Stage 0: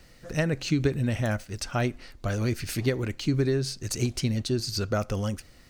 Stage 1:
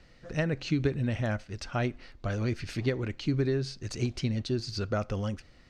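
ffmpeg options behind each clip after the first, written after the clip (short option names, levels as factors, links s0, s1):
-af "lowpass=4600,volume=0.708"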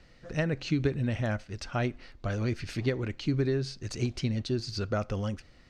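-af anull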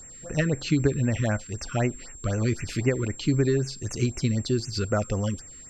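-af "aeval=exprs='val(0)+0.00398*sin(2*PI*7500*n/s)':c=same,afftfilt=real='re*(1-between(b*sr/1024,660*pow(4200/660,0.5+0.5*sin(2*PI*3.9*pts/sr))/1.41,660*pow(4200/660,0.5+0.5*sin(2*PI*3.9*pts/sr))*1.41))':imag='im*(1-between(b*sr/1024,660*pow(4200/660,0.5+0.5*sin(2*PI*3.9*pts/sr))/1.41,660*pow(4200/660,0.5+0.5*sin(2*PI*3.9*pts/sr))*1.41))':win_size=1024:overlap=0.75,volume=1.78"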